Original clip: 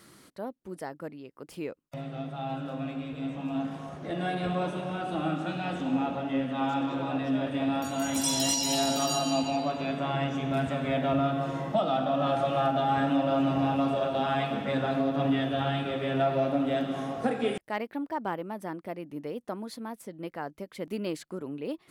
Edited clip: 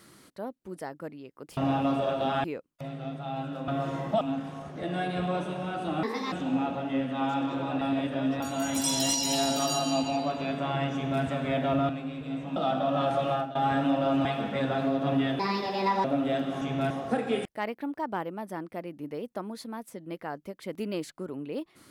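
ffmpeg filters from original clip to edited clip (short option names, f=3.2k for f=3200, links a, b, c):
-filter_complex "[0:a]asplit=17[a][b][c][d][e][f][g][h][i][j][k][l][m][n][o][p][q];[a]atrim=end=1.572[r];[b]atrim=start=13.508:end=14.382[s];[c]atrim=start=1.568:end=2.812[t];[d]atrim=start=11.288:end=11.822[u];[e]atrim=start=3.478:end=5.304[v];[f]atrim=start=5.3:end=5.72,asetpts=PTS-STARTPTS,asetrate=63504,aresample=44100,atrim=end_sample=12862,asetpts=PTS-STARTPTS[w];[g]atrim=start=5.716:end=7.212[x];[h]atrim=start=7.208:end=7.802,asetpts=PTS-STARTPTS,areverse[y];[i]atrim=start=7.798:end=11.292[z];[j]atrim=start=2.808:end=3.482[aa];[k]atrim=start=11.818:end=12.81,asetpts=PTS-STARTPTS,afade=t=out:st=0.732:d=0.26:silence=0.105925[ab];[l]atrim=start=12.81:end=13.512,asetpts=PTS-STARTPTS,afade=t=in:d=0.004:c=hsin:silence=0.105925[ac];[m]atrim=start=14.378:end=15.524[ad];[n]atrim=start=15.52:end=16.46,asetpts=PTS-STARTPTS,asetrate=63504,aresample=44100[ae];[o]atrim=start=16.456:end=17.032[af];[p]atrim=start=10.338:end=10.632[ag];[q]atrim=start=17.028[ah];[r][s]acrossfade=d=0.004:c1=hsin:c2=hsin[ai];[ai][t]acrossfade=d=0.004:c1=hsin:c2=hsin[aj];[aj][u]acrossfade=d=0.004:c1=hsin:c2=hsin[ak];[ak][v]acrossfade=d=0.004:c1=hsin:c2=hsin[al];[al][w]acrossfade=d=0.004:c1=hsin:c2=hsin[am];[am][x]acrossfade=d=0.004:c1=hsin:c2=hsin[an];[an][y]acrossfade=d=0.004:c1=hsin:c2=hsin[ao];[ao][z]acrossfade=d=0.004:c1=hsin:c2=hsin[ap];[ap][aa]acrossfade=d=0.004:c1=hsin:c2=hsin[aq];[ab][ac]concat=n=2:v=0:a=1[ar];[aq][ar]acrossfade=d=0.004:c1=hsin:c2=hsin[as];[as][ad]acrossfade=d=0.004:c1=hsin:c2=hsin[at];[at][ae]acrossfade=d=0.004:c1=hsin:c2=hsin[au];[au][af]acrossfade=d=0.004:c1=hsin:c2=hsin[av];[av][ag]acrossfade=d=0.004:c1=hsin:c2=hsin[aw];[aw][ah]acrossfade=d=0.004:c1=hsin:c2=hsin"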